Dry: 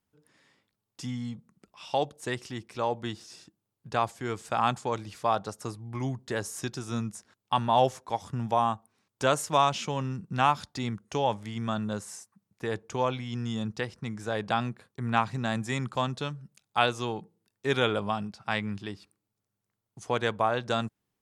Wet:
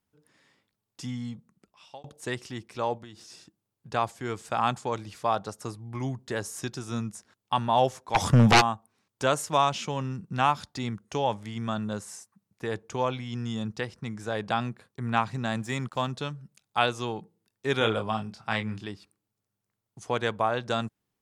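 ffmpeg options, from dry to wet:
-filter_complex "[0:a]asplit=3[s0][s1][s2];[s0]afade=t=out:st=2.97:d=0.02[s3];[s1]acompressor=threshold=0.00794:ratio=6:attack=3.2:release=140:knee=1:detection=peak,afade=t=in:st=2.97:d=0.02,afade=t=out:st=3.89:d=0.02[s4];[s2]afade=t=in:st=3.89:d=0.02[s5];[s3][s4][s5]amix=inputs=3:normalize=0,asplit=3[s6][s7][s8];[s6]afade=t=out:st=8.14:d=0.02[s9];[s7]aeval=exprs='0.237*sin(PI/2*5.01*val(0)/0.237)':c=same,afade=t=in:st=8.14:d=0.02,afade=t=out:st=8.6:d=0.02[s10];[s8]afade=t=in:st=8.6:d=0.02[s11];[s9][s10][s11]amix=inputs=3:normalize=0,asettb=1/sr,asplit=3[s12][s13][s14];[s12]atrim=end=15.564[s15];[s13]atrim=start=15.56:end=16.11,asetpts=PTS-STARTPTS,afade=t=in:d=0.004:c=qsin,afade=t=out:st=0.546:d=0.004:c=qsin,aeval=exprs='sgn(val(0))*max(abs(val(0))-0.002,0)':c=same[s16];[s14]atrim=start=16.106[s17];[s15][s16]acrossfade=d=0.004:c1=hsin:c2=qsin[s18];[s18][s17]acrossfade=d=0.004:c1=qsin:c2=hsin,asettb=1/sr,asplit=3[s19][s20][s21];[s19]atrim=end=17.784[s22];[s20]atrim=start=17.78:end=18.85,asetpts=PTS-STARTPTS,afade=t=in:d=0.004:c=qsin,afade=t=out:st=1.066:d=0.004:c=qsin,asplit=2[s23][s24];[s24]adelay=27,volume=0.473[s25];[s23][s25]amix=inputs=2:normalize=0,atrim=end_sample=47187[s26];[s21]atrim=start=18.846[s27];[s22][s26]acrossfade=d=0.004:c1=hsin:c2=qsin[s28];[s28][s27]acrossfade=d=0.004:c1=qsin:c2=hsin,asplit=2[s29][s30];[s29]atrim=end=2.04,asetpts=PTS-STARTPTS,afade=t=out:st=1.18:d=0.86:c=qsin[s31];[s30]atrim=start=2.04,asetpts=PTS-STARTPTS,afade=t=in:d=0.004:c=hsin[s32];[s31][s32]concat=n=2:v=0:a=1"

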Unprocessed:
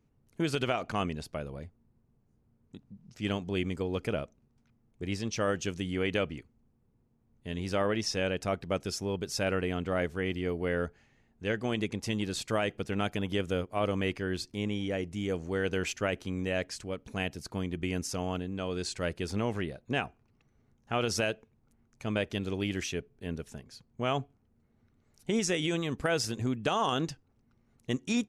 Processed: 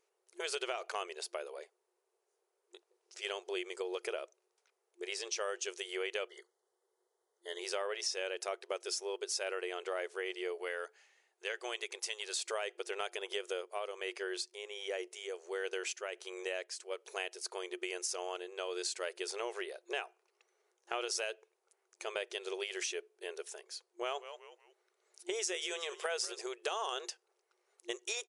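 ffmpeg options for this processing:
-filter_complex "[0:a]asettb=1/sr,asplit=3[s0][s1][s2];[s0]atrim=end=6.284[s3];[s1]atrim=start=6.28:end=7.59,asetpts=PTS-STARTPTS,afade=t=in:d=0.004:c=qsin,afade=t=out:st=1.306:d=0.004:c=qsin,asuperstop=centerf=2500:order=20:qfactor=3.3[s4];[s2]atrim=start=7.586[s5];[s3][s4]acrossfade=d=0.004:c1=hsin:c2=qsin[s6];[s6][s5]acrossfade=d=0.004:c1=qsin:c2=hsin,asettb=1/sr,asplit=3[s7][s8][s9];[s7]atrim=end=10.584[s10];[s8]atrim=start=10.58:end=12.37,asetpts=PTS-STARTPTS,afade=t=in:d=0.004:c=qsin,afade=t=out:st=1.786:d=0.004:c=qsin,highpass=f=760:p=1[s11];[s9]atrim=start=12.366[s12];[s10][s11]acrossfade=d=0.004:c1=hsin:c2=qsin[s13];[s13][s12]acrossfade=d=0.004:c1=qsin:c2=hsin,asplit=3[s14][s15][s16];[s14]afade=t=out:st=13.38:d=0.02[s17];[s15]tremolo=f=1.4:d=0.61,afade=t=in:st=13.38:d=0.02,afade=t=out:st=16.9:d=0.02[s18];[s16]afade=t=in:st=16.9:d=0.02[s19];[s17][s18][s19]amix=inputs=3:normalize=0,asplit=3[s20][s21][s22];[s20]afade=t=out:st=24.06:d=0.02[s23];[s21]asplit=4[s24][s25][s26][s27];[s25]adelay=184,afreqshift=-110,volume=0.168[s28];[s26]adelay=368,afreqshift=-220,volume=0.0569[s29];[s27]adelay=552,afreqshift=-330,volume=0.0195[s30];[s24][s28][s29][s30]amix=inputs=4:normalize=0,afade=t=in:st=24.06:d=0.02,afade=t=out:st=26.4:d=0.02[s31];[s22]afade=t=in:st=26.4:d=0.02[s32];[s23][s31][s32]amix=inputs=3:normalize=0,afftfilt=real='re*between(b*sr/4096,350,11000)':imag='im*between(b*sr/4096,350,11000)':win_size=4096:overlap=0.75,highshelf=f=4500:g=9.5,acompressor=threshold=0.0158:ratio=3"

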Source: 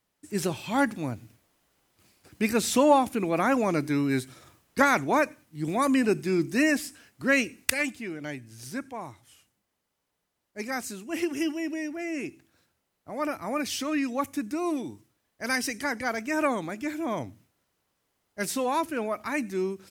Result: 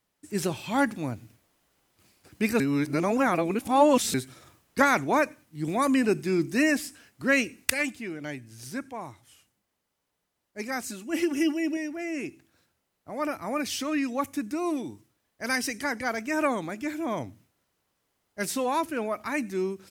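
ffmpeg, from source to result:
-filter_complex "[0:a]asettb=1/sr,asplit=3[s0][s1][s2];[s0]atrim=end=10.884[s3];[s1]atrim=start=10.88:end=11.77,asetpts=PTS-STARTPTS,afade=t=in:d=0.004:c=qsin,afade=t=out:st=0.886:d=0.004:c=qsin,aecho=1:1:3.5:0.65,atrim=end_sample=39249[s4];[s2]atrim=start=11.766[s5];[s3][s4]acrossfade=d=0.004:c1=hsin:c2=qsin[s6];[s6][s5]acrossfade=d=0.004:c1=qsin:c2=hsin,asplit=3[s7][s8][s9];[s7]atrim=end=2.602[s10];[s8]atrim=start=2.598:end=4.142,asetpts=PTS-STARTPTS,areverse[s11];[s9]atrim=start=4.138[s12];[s10][s11]acrossfade=d=0.004:c1=hsin:c2=hsin[s13];[s13][s12]acrossfade=d=0.004:c1=hsin:c2=hsin"

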